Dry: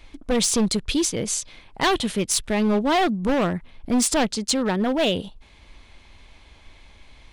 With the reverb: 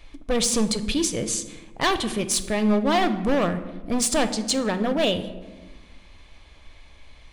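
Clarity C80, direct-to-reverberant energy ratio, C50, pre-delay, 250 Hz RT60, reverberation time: 14.5 dB, 9.5 dB, 12.0 dB, 3 ms, 1.7 s, 1.3 s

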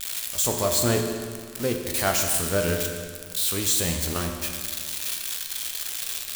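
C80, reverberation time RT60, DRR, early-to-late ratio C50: 5.5 dB, 1.9 s, 2.0 dB, 4.5 dB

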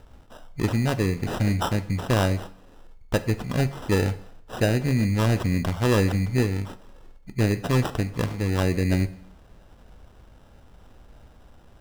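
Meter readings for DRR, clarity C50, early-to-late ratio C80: 11.5 dB, 15.5 dB, 18.0 dB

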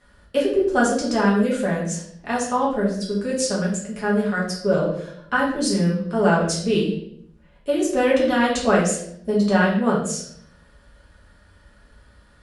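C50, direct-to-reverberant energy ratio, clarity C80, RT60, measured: 4.5 dB, -5.5 dB, 8.0 dB, 0.65 s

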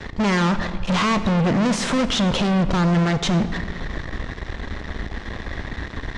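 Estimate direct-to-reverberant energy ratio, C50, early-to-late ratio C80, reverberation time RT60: 11.0 dB, 12.0 dB, 13.0 dB, 1.8 s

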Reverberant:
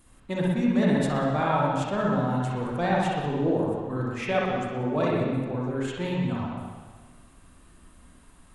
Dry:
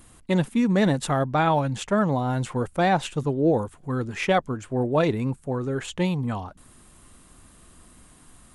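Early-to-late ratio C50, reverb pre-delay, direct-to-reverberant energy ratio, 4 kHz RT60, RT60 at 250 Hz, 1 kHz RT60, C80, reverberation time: -3.5 dB, 38 ms, -4.5 dB, 1.5 s, 1.5 s, 1.5 s, 1.5 dB, 1.5 s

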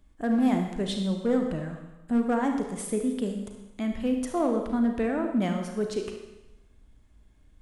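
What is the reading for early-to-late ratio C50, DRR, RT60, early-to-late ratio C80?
5.0 dB, 3.5 dB, 1.0 s, 8.0 dB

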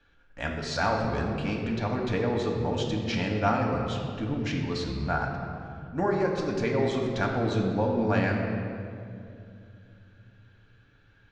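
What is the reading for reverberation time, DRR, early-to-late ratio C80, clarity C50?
2.6 s, -0.5 dB, 4.0 dB, 3.0 dB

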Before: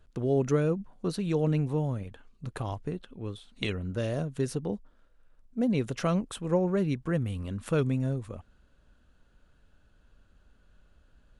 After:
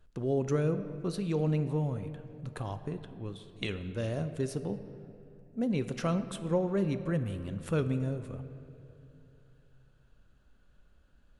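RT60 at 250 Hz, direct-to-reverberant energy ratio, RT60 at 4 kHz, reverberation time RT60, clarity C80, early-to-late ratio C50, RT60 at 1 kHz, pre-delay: 3.2 s, 9.5 dB, 1.6 s, 2.8 s, 12.0 dB, 11.0 dB, 2.5 s, 5 ms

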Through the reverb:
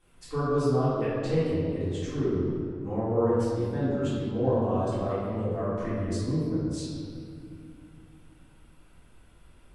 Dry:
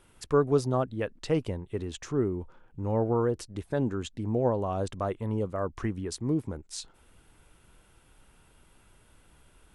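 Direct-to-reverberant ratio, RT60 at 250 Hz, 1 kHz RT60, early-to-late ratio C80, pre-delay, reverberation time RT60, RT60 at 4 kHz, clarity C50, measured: -13.5 dB, 3.6 s, 2.0 s, 0.0 dB, 3 ms, 2.3 s, 1.4 s, -3.0 dB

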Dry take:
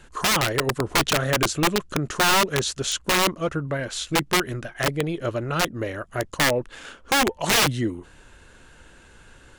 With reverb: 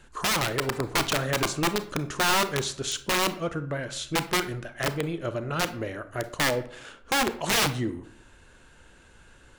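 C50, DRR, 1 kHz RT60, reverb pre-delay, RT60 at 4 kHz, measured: 14.0 dB, 11.0 dB, 0.55 s, 28 ms, 0.35 s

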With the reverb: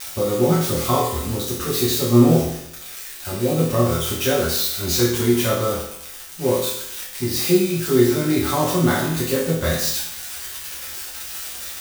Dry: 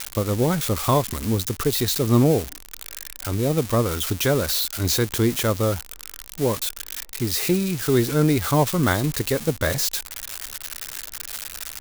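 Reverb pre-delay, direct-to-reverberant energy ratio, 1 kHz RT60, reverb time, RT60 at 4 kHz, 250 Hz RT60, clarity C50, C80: 6 ms, -7.5 dB, 0.75 s, 0.75 s, 0.70 s, 0.75 s, 3.0 dB, 6.5 dB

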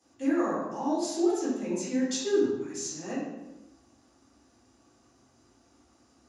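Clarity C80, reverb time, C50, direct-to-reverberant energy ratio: 2.5 dB, 1.1 s, -0.5 dB, -12.5 dB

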